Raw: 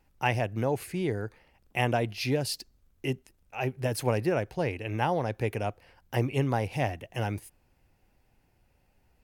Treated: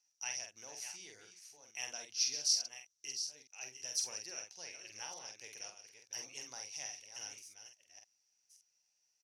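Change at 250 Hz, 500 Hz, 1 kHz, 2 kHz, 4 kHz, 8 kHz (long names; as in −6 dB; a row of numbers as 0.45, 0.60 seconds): −33.5, −28.0, −23.5, −14.0, +1.0, +8.0 decibels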